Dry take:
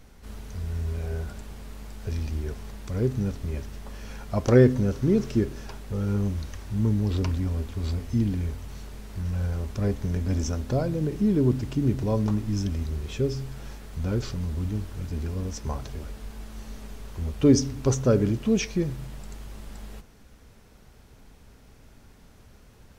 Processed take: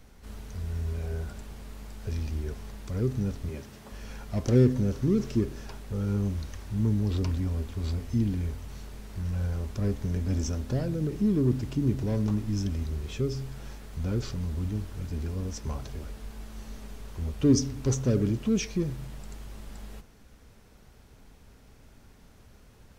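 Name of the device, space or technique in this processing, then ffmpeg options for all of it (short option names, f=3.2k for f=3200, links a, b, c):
one-band saturation: -filter_complex "[0:a]acrossover=split=420|3100[a][b][c];[b]asoftclip=type=tanh:threshold=-36.5dB[d];[a][d][c]amix=inputs=3:normalize=0,asettb=1/sr,asplit=3[e][f][g];[e]atrim=end=3.494[h];[f]atrim=start=3.49:end=3.92,asetpts=PTS-STARTPTS,afade=t=in:d=0.004:c=qsin,afade=t=out:st=0.426:d=0.004:c=qsin,highpass=110[i];[g]atrim=start=3.916[j];[h][i]acrossfade=d=0.004:c1=hsin:c2=qsin[k];[k][j]acrossfade=d=0.004:c1=qsin:c2=hsin,volume=-2dB"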